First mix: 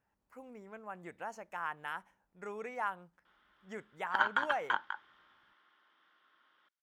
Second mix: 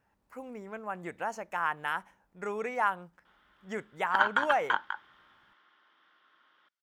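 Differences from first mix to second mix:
speech +8.0 dB; background +4.0 dB

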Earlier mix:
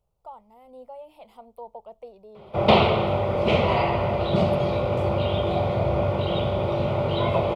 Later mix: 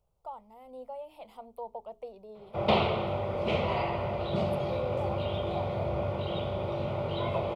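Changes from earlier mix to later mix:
background -8.0 dB; master: add notches 60/120/180/240/300/360/420 Hz

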